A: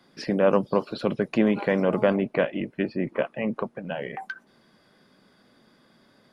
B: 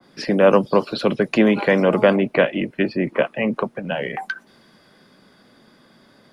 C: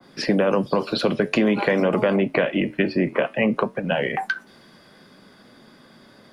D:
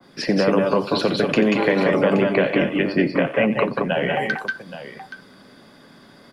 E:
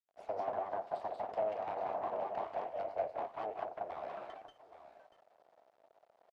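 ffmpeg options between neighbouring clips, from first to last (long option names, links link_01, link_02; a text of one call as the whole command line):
ffmpeg -i in.wav -filter_complex "[0:a]acrossover=split=160|320|1600[link_01][link_02][link_03][link_04];[link_01]alimiter=level_in=14.5dB:limit=-24dB:level=0:latency=1,volume=-14.5dB[link_05];[link_05][link_02][link_03][link_04]amix=inputs=4:normalize=0,adynamicequalizer=threshold=0.0112:dfrequency=1700:dqfactor=0.7:tfrequency=1700:tqfactor=0.7:attack=5:release=100:ratio=0.375:range=2:mode=boostabove:tftype=highshelf,volume=6.5dB" out.wav
ffmpeg -i in.wav -af "alimiter=limit=-8dB:level=0:latency=1:release=37,acompressor=threshold=-18dB:ratio=6,flanger=delay=7.1:depth=5.1:regen=-76:speed=0.52:shape=triangular,volume=7dB" out.wav
ffmpeg -i in.wav -af "aecho=1:1:88|184|191|824:0.2|0.501|0.596|0.224" out.wav
ffmpeg -i in.wav -af "aeval=exprs='abs(val(0))':channel_layout=same,acrusher=bits=6:mix=0:aa=0.000001,bandpass=frequency=670:width_type=q:width=5.2:csg=0,volume=-6dB" out.wav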